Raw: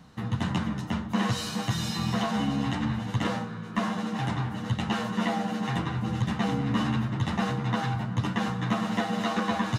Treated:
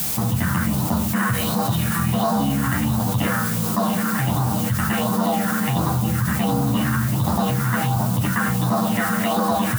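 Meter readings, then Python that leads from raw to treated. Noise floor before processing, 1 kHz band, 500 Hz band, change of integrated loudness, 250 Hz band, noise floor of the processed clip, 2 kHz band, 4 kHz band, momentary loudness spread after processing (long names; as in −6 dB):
−37 dBFS, +8.0 dB, +8.0 dB, +8.0 dB, +7.0 dB, −23 dBFS, +8.0 dB, +4.0 dB, 1 LU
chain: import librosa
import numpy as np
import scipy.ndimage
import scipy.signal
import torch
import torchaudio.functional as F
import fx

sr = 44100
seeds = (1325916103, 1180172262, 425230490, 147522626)

y = scipy.signal.medfilt(x, 9)
y = fx.band_shelf(y, sr, hz=890.0, db=9.5, octaves=1.7)
y = fx.phaser_stages(y, sr, stages=4, low_hz=690.0, high_hz=2300.0, hz=1.4, feedback_pct=50)
y = scipy.signal.sosfilt(scipy.signal.butter(4, 49.0, 'highpass', fs=sr, output='sos'), y)
y = fx.quant_dither(y, sr, seeds[0], bits=8, dither='triangular')
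y = fx.high_shelf(y, sr, hz=5900.0, db=10.5)
y = fx.env_flatten(y, sr, amount_pct=70)
y = y * librosa.db_to_amplitude(1.5)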